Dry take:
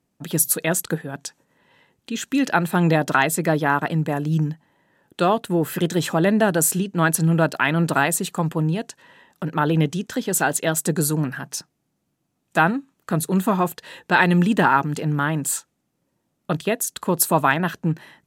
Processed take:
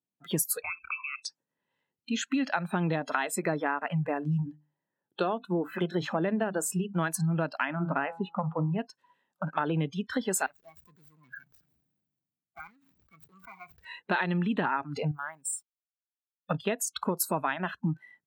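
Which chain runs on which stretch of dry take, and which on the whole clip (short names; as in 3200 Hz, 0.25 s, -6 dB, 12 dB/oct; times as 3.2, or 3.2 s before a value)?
0.62–1.25 inverted band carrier 2800 Hz + compressor 3:1, threshold -33 dBFS + notches 50/100/150/200/250/300/350/400 Hz
4.4–6.93 high shelf 2000 Hz -4.5 dB + notches 50/100/150/200/250/300 Hz
7.65–8.79 air absorption 420 m + de-hum 166.2 Hz, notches 9
10.46–13.85 median filter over 41 samples + passive tone stack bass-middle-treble 5-5-5 + sustainer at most 32 dB/s
15.11–16.51 pre-emphasis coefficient 0.8 + compressor 2.5:1, threshold -27 dBFS + backlash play -50 dBFS
whole clip: spectral noise reduction 24 dB; HPF 96 Hz; compressor 5:1, threshold -26 dBFS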